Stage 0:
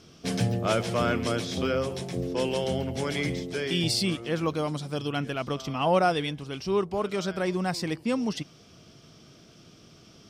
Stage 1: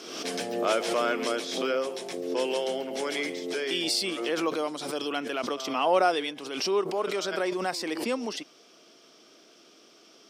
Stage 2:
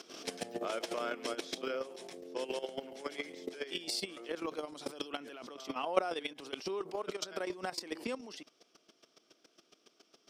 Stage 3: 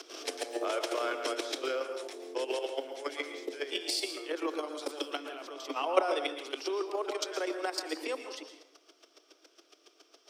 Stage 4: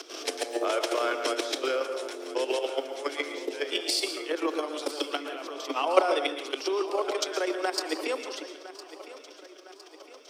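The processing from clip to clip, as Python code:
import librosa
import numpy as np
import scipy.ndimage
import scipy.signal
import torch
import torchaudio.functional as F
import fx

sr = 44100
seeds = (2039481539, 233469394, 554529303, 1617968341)

y1 = scipy.signal.sosfilt(scipy.signal.butter(4, 300.0, 'highpass', fs=sr, output='sos'), x)
y1 = fx.pre_swell(y1, sr, db_per_s=50.0)
y2 = fx.chopper(y1, sr, hz=7.2, depth_pct=60, duty_pct=10)
y2 = fx.level_steps(y2, sr, step_db=12)
y3 = scipy.signal.sosfilt(scipy.signal.butter(16, 280.0, 'highpass', fs=sr, output='sos'), y2)
y3 = fx.rev_plate(y3, sr, seeds[0], rt60_s=0.72, hf_ratio=0.65, predelay_ms=105, drr_db=7.0)
y3 = y3 * librosa.db_to_amplitude(4.0)
y4 = fx.echo_feedback(y3, sr, ms=1009, feedback_pct=52, wet_db=-16.0)
y4 = y4 * librosa.db_to_amplitude(5.0)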